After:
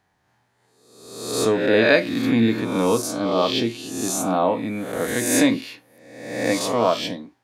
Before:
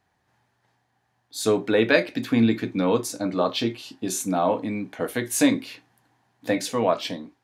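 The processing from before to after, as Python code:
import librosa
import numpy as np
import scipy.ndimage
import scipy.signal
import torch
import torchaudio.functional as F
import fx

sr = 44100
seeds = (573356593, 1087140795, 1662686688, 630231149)

y = fx.spec_swells(x, sr, rise_s=0.95)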